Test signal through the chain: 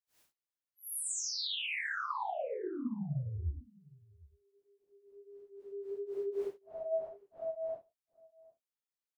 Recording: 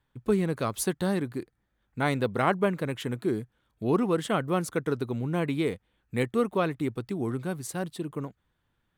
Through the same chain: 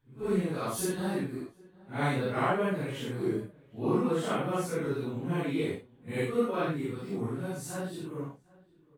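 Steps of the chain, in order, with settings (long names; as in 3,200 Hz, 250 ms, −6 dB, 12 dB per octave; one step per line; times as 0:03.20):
random phases in long frames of 200 ms
slap from a distant wall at 130 metres, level −23 dB
level −3 dB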